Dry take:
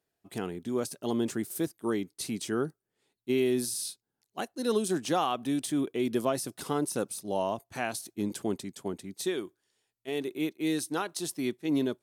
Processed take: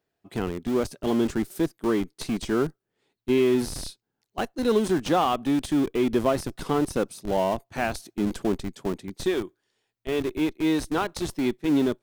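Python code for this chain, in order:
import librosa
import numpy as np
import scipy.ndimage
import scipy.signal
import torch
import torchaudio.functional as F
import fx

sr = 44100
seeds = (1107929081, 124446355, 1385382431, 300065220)

p1 = fx.peak_eq(x, sr, hz=11000.0, db=-11.0, octaves=1.5)
p2 = fx.schmitt(p1, sr, flips_db=-33.5)
p3 = p1 + (p2 * 10.0 ** (-7.5 / 20.0))
y = p3 * 10.0 ** (4.5 / 20.0)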